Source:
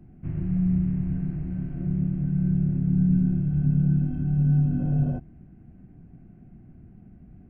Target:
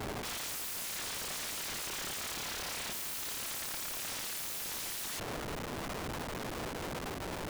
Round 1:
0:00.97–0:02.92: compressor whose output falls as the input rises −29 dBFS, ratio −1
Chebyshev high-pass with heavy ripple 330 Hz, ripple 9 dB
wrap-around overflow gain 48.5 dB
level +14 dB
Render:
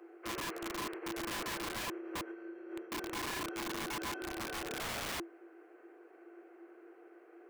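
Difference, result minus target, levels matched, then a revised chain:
250 Hz band +5.0 dB
0:00.97–0:02.92: compressor whose output falls as the input rises −29 dBFS, ratio −1
wrap-around overflow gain 48.5 dB
level +14 dB

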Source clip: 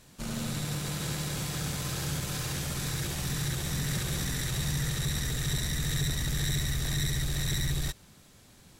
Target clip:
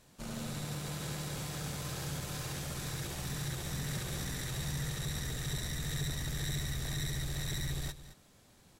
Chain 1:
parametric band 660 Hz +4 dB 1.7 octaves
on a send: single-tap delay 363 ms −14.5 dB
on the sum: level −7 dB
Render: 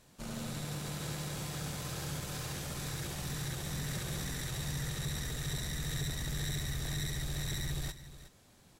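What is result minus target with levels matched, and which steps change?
echo 147 ms late
change: single-tap delay 216 ms −14.5 dB

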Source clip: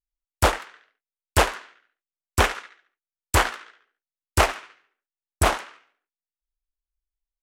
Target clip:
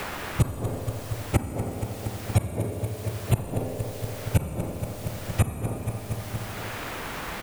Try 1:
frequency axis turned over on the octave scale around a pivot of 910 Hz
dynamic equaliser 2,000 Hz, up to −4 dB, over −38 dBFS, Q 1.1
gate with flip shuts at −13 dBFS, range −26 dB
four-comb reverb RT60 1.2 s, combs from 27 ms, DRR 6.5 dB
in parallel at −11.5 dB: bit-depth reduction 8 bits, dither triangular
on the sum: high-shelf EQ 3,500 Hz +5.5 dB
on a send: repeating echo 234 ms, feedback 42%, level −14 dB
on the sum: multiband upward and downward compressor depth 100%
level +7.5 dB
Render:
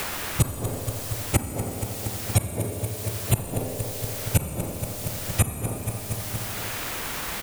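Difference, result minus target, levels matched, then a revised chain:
8,000 Hz band +8.0 dB
frequency axis turned over on the octave scale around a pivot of 910 Hz
dynamic equaliser 2,000 Hz, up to −4 dB, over −38 dBFS, Q 1.1
gate with flip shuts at −13 dBFS, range −26 dB
four-comb reverb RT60 1.2 s, combs from 27 ms, DRR 6.5 dB
in parallel at −11.5 dB: bit-depth reduction 8 bits, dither triangular
on the sum: high-shelf EQ 3,500 Hz −6 dB
on a send: repeating echo 234 ms, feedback 42%, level −14 dB
on the sum: multiband upward and downward compressor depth 100%
level +7.5 dB

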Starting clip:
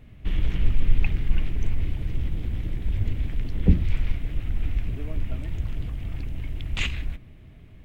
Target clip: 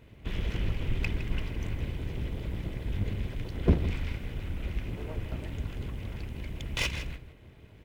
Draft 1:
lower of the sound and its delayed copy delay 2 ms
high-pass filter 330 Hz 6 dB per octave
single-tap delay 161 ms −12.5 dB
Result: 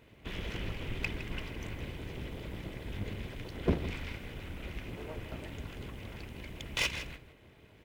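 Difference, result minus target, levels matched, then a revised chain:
125 Hz band −3.0 dB
lower of the sound and its delayed copy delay 2 ms
high-pass filter 94 Hz 6 dB per octave
single-tap delay 161 ms −12.5 dB

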